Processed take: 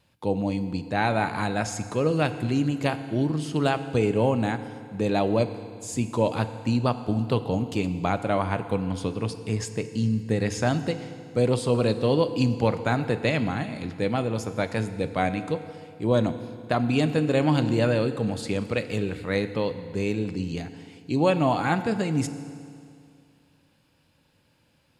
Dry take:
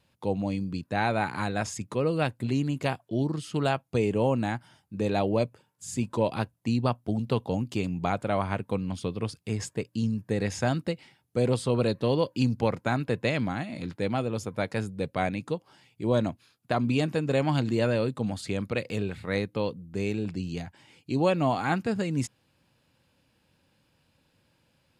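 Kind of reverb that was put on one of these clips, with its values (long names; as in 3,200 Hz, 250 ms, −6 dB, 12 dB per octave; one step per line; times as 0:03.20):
feedback delay network reverb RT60 2.3 s, low-frequency decay 1×, high-frequency decay 0.9×, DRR 10 dB
level +2.5 dB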